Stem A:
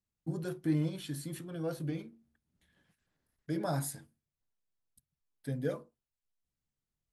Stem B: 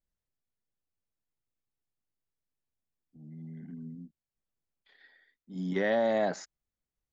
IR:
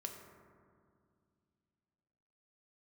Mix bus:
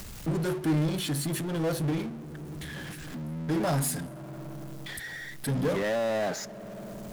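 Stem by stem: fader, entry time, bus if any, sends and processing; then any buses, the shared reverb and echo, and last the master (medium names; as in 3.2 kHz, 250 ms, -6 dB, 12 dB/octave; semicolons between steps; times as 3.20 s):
+0.5 dB, 0.00 s, send -21 dB, none
-8.5 dB, 0.00 s, send -21.5 dB, none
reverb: on, RT60 2.2 s, pre-delay 3 ms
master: upward compressor, threshold -44 dBFS; power-law waveshaper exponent 0.5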